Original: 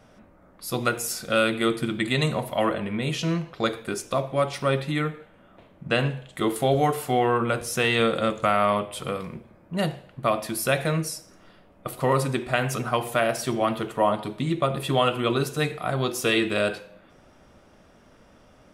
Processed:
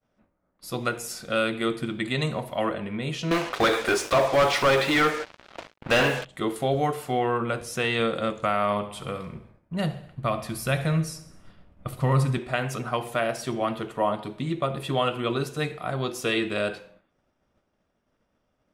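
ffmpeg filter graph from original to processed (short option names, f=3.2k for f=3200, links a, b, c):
-filter_complex "[0:a]asettb=1/sr,asplit=3[a][b][c];[a]atrim=end=3.314[d];[b]atrim=start=3.31:end=6.25,asetpts=PTS-STARTPTS,afade=t=in:d=0.004:c=qsin,afade=t=out:st=2.936:d=0.004:c=qsin,equalizer=f=170:w=2.9:g=-13,asplit=2[e][f];[f]highpass=f=720:p=1,volume=27dB,asoftclip=type=tanh:threshold=-8.5dB[g];[e][g]amix=inputs=2:normalize=0,lowpass=f=3.2k:p=1,volume=-6dB,acrusher=bits=4:mix=0:aa=0.5[h];[c]atrim=start=6.246[i];[d][h]acrossfade=d=0.004:c1=hsin:c2=qsin[j];[j][i]acrossfade=d=0.004:c1=qsin:c2=hsin,asettb=1/sr,asplit=3[k][l][m];[k]atrim=end=8.624[n];[l]atrim=start=8.62:end=12.38,asetpts=PTS-STARTPTS,afade=t=in:d=0.004:c=qsin,afade=t=out:st=3.756:d=0.004:c=qsin,asubboost=boost=5:cutoff=180,aecho=1:1:68|136|204|272|340:0.158|0.0888|0.0497|0.0278|0.0156,atrim=end_sample=165816[o];[m]atrim=start=12.376[p];[n][o]acrossfade=d=0.004:c1=hsin:c2=qsin[q];[q][p]acrossfade=d=0.004:c1=qsin:c2=hsin,agate=range=-33dB:threshold=-43dB:ratio=3:detection=peak,highshelf=f=11k:g=-9,volume=-3dB"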